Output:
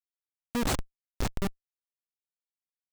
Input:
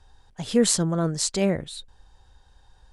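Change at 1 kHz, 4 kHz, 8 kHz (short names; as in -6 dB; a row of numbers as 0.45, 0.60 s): -1.5, -11.0, -15.0 dB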